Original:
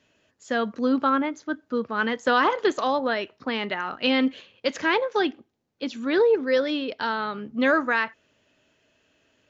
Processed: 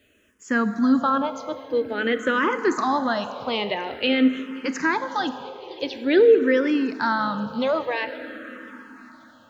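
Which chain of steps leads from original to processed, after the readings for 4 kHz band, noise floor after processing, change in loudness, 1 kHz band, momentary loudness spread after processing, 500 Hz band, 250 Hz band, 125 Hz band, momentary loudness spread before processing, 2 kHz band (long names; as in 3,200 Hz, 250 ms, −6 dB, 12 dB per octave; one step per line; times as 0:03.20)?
0.0 dB, −53 dBFS, +2.0 dB, +1.0 dB, 15 LU, +2.5 dB, +3.5 dB, can't be measured, 9 LU, 0.0 dB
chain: low-shelf EQ 200 Hz +6 dB
brickwall limiter −14 dBFS, peak gain reduction 5.5 dB
bit-depth reduction 12 bits, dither none
delay with a high-pass on its return 527 ms, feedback 67%, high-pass 2,600 Hz, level −17 dB
dense smooth reverb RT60 3.9 s, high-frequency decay 0.5×, DRR 10 dB
frequency shifter mixed with the dry sound −0.48 Hz
level +5 dB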